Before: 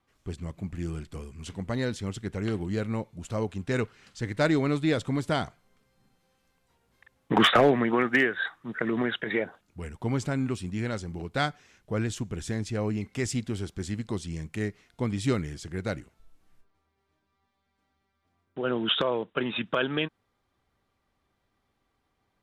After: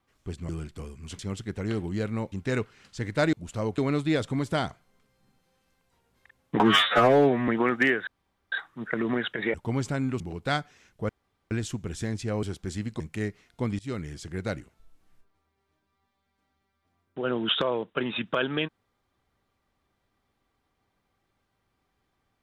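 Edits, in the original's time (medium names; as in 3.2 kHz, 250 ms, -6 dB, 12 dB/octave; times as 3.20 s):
0.49–0.85 s: delete
1.55–1.96 s: delete
3.09–3.54 s: move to 4.55 s
7.37–7.81 s: stretch 2×
8.40 s: insert room tone 0.45 s
9.42–9.91 s: delete
10.57–11.09 s: delete
11.98 s: insert room tone 0.42 s
12.90–13.56 s: delete
14.13–14.40 s: delete
15.19–15.69 s: fade in equal-power, from -23.5 dB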